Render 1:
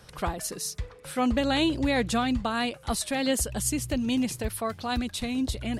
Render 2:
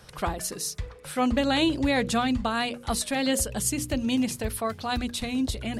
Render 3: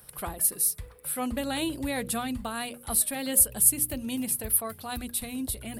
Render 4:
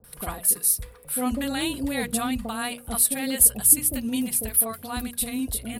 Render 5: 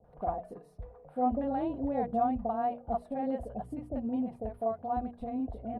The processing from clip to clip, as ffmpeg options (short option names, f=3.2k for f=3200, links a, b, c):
-af "bandreject=f=60:t=h:w=6,bandreject=f=120:t=h:w=6,bandreject=f=180:t=h:w=6,bandreject=f=240:t=h:w=6,bandreject=f=300:t=h:w=6,bandreject=f=360:t=h:w=6,bandreject=f=420:t=h:w=6,bandreject=f=480:t=h:w=6,bandreject=f=540:t=h:w=6,volume=1.5dB"
-af "aexciter=amount=14.1:drive=3.2:freq=9.1k,volume=-7dB"
-filter_complex "[0:a]aecho=1:1:4.2:0.3,acrossover=split=660[a][b];[b]adelay=40[c];[a][c]amix=inputs=2:normalize=0,volume=3.5dB"
-af "lowpass=f=720:t=q:w=4.5,volume=-6.5dB"